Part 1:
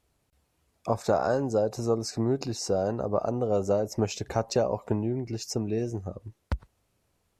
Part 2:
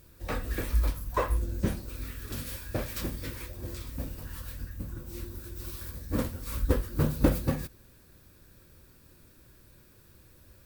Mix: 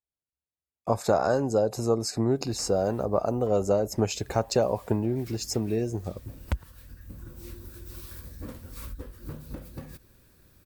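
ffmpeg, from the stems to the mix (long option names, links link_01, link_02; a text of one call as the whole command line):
ffmpeg -i stem1.wav -i stem2.wav -filter_complex "[0:a]agate=range=-31dB:threshold=-45dB:ratio=16:detection=peak,highshelf=frequency=7100:gain=8,bandreject=frequency=5800:width=9,volume=1.5dB,asplit=2[link_01][link_02];[1:a]acompressor=threshold=-33dB:ratio=16,adelay=2300,volume=-2dB[link_03];[link_02]apad=whole_len=571269[link_04];[link_03][link_04]sidechaincompress=threshold=-32dB:ratio=8:attack=23:release=893[link_05];[link_01][link_05]amix=inputs=2:normalize=0" out.wav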